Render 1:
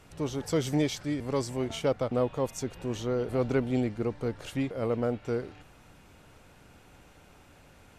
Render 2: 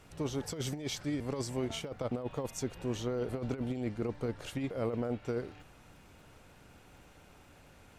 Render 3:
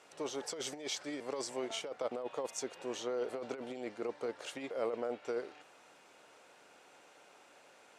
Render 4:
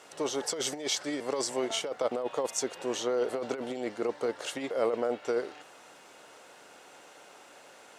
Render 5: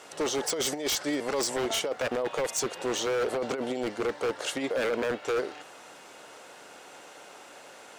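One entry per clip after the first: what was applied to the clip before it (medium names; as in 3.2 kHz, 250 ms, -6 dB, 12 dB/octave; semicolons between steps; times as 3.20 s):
compressor with a negative ratio -29 dBFS, ratio -0.5; crackle 55 per s -53 dBFS; trim -4 dB
Chebyshev band-pass 490–8300 Hz, order 2; trim +1 dB
treble shelf 8.1 kHz +4.5 dB; band-stop 2.4 kHz, Q 15; trim +7.5 dB
wavefolder -26.5 dBFS; trim +4.5 dB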